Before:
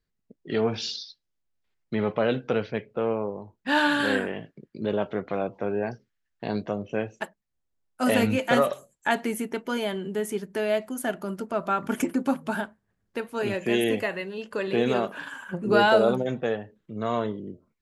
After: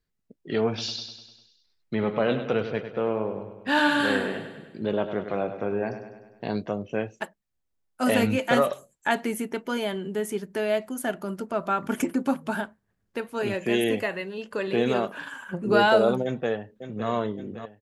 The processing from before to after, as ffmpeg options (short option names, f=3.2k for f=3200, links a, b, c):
-filter_complex "[0:a]asettb=1/sr,asplit=3[a][b][c];[a]atrim=end=0.684[d];[b]atrim=start=0.68:end=6.47,asetpts=PTS-STARTPTS,afade=t=in:d=0.004:c=qsin,afade=t=out:st=5.786:d=0.004:c=qsin,aecho=1:1:100|200|300|400|500|600|700:0.316|0.183|0.106|0.0617|0.0358|0.0208|0.012,atrim=end_sample=255339[e];[c]atrim=start=6.466[f];[d][e]acrossfade=d=0.004:c1=hsin:c2=qsin[g];[g][f]acrossfade=d=0.004:c1=qsin:c2=hsin,asplit=2[h][i];[i]afade=t=in:st=16.24:d=0.01,afade=t=out:st=17.09:d=0.01,aecho=0:1:560|1120|1680|2240|2800|3360:0.316228|0.173925|0.0956589|0.0526124|0.0289368|0.0159152[j];[h][j]amix=inputs=2:normalize=0"